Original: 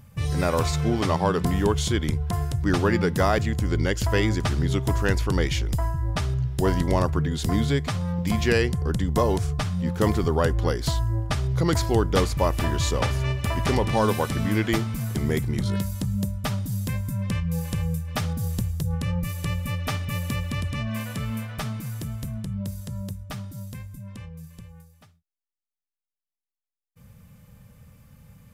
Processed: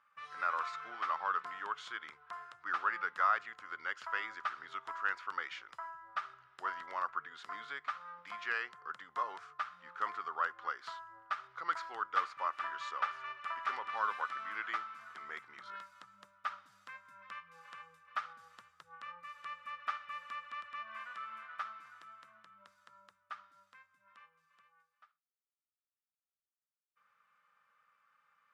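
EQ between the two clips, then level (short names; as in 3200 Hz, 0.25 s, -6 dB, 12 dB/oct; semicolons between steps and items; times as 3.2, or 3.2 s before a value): ladder band-pass 1400 Hz, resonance 70%; +1.0 dB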